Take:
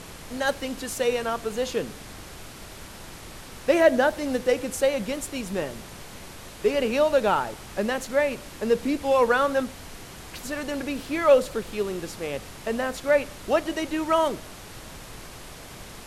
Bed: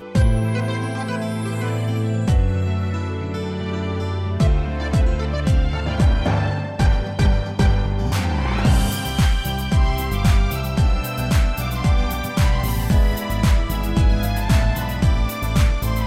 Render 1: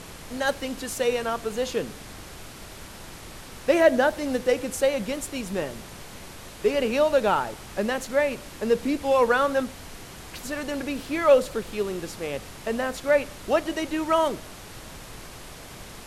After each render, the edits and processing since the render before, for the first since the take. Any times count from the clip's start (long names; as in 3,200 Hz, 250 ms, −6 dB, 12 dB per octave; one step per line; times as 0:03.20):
no processing that can be heard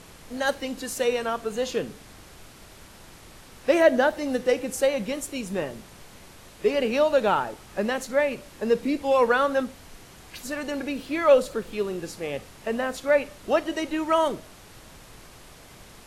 noise reduction from a noise print 6 dB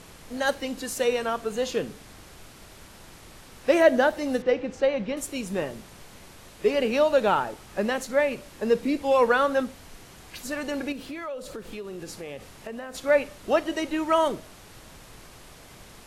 0:04.42–0:05.17: high-frequency loss of the air 190 metres
0:10.92–0:12.95: downward compressor, threshold −33 dBFS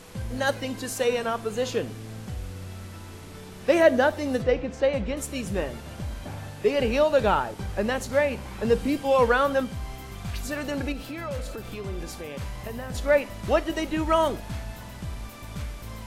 mix in bed −18 dB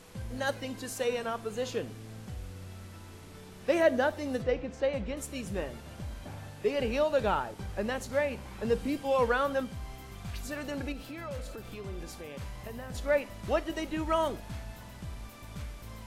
level −6.5 dB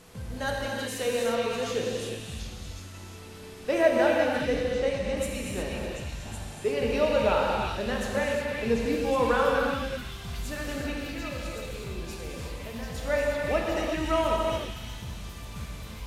echo through a band-pass that steps 370 ms, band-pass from 3,000 Hz, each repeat 0.7 octaves, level −0.5 dB
reverb whose tail is shaped and stops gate 390 ms flat, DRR −2 dB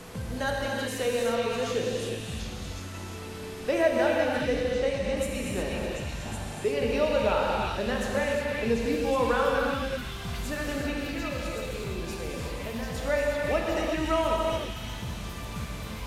multiband upward and downward compressor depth 40%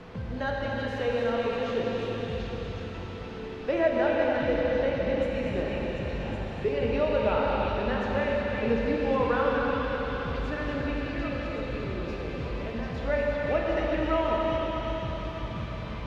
high-frequency loss of the air 250 metres
feedback delay with all-pass diffusion 512 ms, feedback 48%, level −6 dB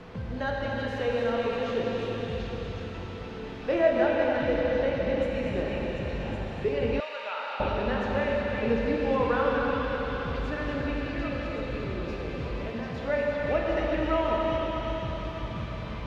0:03.44–0:04.05: double-tracking delay 26 ms −5 dB
0:07.00–0:07.60: high-pass filter 1,200 Hz
0:12.71–0:13.40: high-pass filter 86 Hz